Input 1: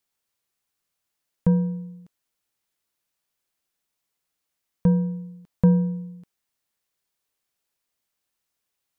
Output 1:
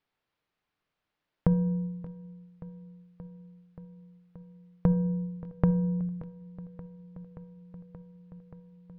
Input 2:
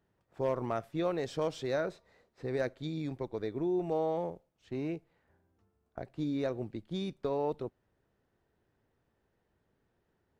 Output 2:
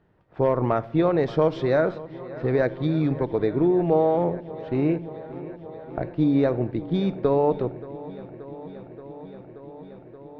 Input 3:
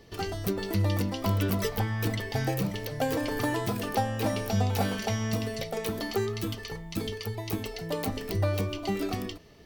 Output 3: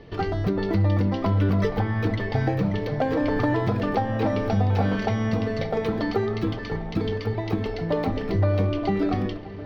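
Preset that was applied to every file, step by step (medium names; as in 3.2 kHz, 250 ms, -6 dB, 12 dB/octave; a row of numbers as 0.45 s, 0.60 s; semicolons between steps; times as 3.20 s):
dynamic bell 2.8 kHz, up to -5 dB, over -54 dBFS, Q 3.4; compression, threshold -27 dBFS; distance through air 300 m; feedback echo behind a low-pass 578 ms, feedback 82%, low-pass 3.7 kHz, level -18 dB; simulated room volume 2000 m³, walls furnished, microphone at 0.47 m; peak normalisation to -9 dBFS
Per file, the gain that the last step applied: +5.0 dB, +13.0 dB, +8.5 dB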